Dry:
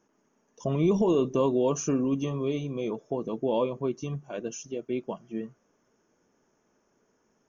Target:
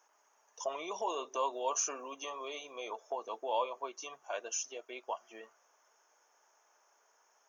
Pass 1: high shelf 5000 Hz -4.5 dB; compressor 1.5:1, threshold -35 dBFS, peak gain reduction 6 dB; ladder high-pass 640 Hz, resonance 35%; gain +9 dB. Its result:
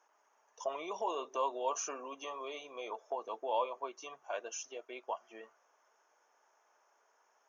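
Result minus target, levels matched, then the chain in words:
8000 Hz band -5.0 dB
high shelf 5000 Hz +7 dB; compressor 1.5:1, threshold -35 dBFS, peak gain reduction 6 dB; ladder high-pass 640 Hz, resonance 35%; gain +9 dB

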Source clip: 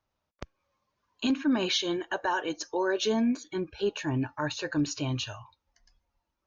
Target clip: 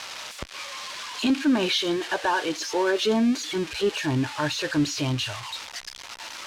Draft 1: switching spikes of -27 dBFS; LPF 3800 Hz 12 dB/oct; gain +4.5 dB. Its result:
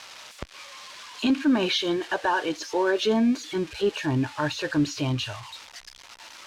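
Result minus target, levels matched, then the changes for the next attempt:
switching spikes: distortion -7 dB
change: switching spikes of -20 dBFS

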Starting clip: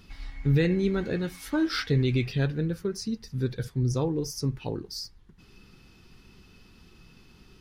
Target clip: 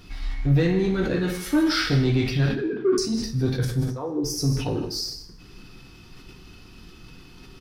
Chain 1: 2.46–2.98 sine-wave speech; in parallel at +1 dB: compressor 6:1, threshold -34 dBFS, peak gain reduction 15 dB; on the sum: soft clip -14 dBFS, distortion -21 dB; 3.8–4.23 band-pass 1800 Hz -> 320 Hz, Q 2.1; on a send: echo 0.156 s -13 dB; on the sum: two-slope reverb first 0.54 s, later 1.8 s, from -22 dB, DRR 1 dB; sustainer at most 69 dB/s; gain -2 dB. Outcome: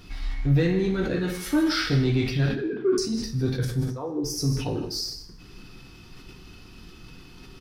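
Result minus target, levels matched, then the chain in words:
compressor: peak gain reduction +7 dB
2.46–2.98 sine-wave speech; in parallel at +1 dB: compressor 6:1, threshold -25.5 dBFS, peak gain reduction 7.5 dB; on the sum: soft clip -14 dBFS, distortion -18 dB; 3.8–4.23 band-pass 1800 Hz -> 320 Hz, Q 2.1; on a send: echo 0.156 s -13 dB; on the sum: two-slope reverb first 0.54 s, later 1.8 s, from -22 dB, DRR 1 dB; sustainer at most 69 dB/s; gain -2 dB

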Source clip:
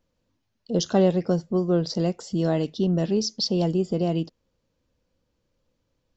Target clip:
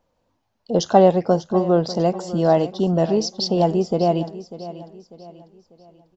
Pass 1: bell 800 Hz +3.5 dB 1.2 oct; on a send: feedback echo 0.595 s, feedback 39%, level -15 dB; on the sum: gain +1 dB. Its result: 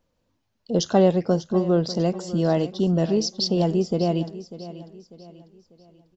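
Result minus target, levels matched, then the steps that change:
1000 Hz band -5.5 dB
change: bell 800 Hz +13 dB 1.2 oct

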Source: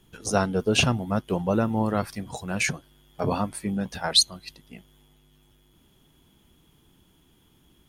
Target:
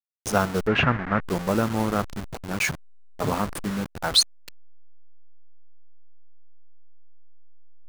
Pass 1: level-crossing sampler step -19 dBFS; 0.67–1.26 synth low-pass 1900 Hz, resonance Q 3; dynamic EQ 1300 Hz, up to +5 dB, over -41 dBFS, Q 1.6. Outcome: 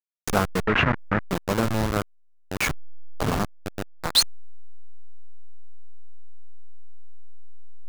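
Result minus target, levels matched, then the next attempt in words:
level-crossing sampler: distortion +11 dB
level-crossing sampler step -27 dBFS; 0.67–1.26 synth low-pass 1900 Hz, resonance Q 3; dynamic EQ 1300 Hz, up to +5 dB, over -41 dBFS, Q 1.6

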